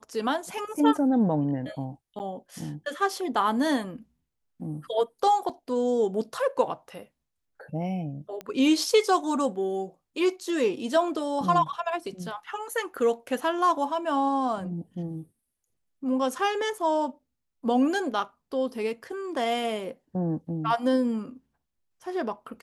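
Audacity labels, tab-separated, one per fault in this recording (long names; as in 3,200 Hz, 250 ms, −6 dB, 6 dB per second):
2.190000	2.200000	drop-out 9.7 ms
5.490000	5.490000	drop-out 4.3 ms
8.410000	8.410000	click −22 dBFS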